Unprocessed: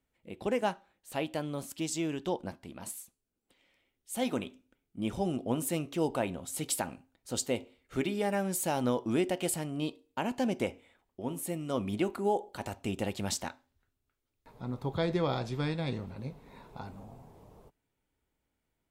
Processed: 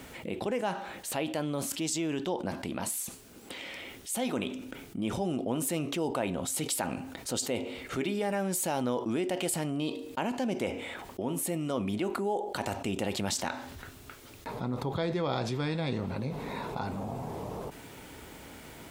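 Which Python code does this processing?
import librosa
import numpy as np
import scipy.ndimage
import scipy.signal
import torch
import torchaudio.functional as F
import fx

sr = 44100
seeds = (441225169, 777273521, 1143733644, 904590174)

y = fx.highpass(x, sr, hz=130.0, slope=6)
y = fx.high_shelf(y, sr, hz=11000.0, db=-4.0)
y = fx.env_flatten(y, sr, amount_pct=70)
y = y * 10.0 ** (-3.0 / 20.0)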